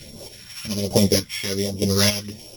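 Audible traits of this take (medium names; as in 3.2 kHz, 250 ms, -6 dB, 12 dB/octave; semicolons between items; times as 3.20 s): a buzz of ramps at a fixed pitch in blocks of 8 samples; phasing stages 2, 1.3 Hz, lowest notch 400–1700 Hz; chopped level 1.1 Hz, depth 65%, duty 30%; a shimmering, thickened sound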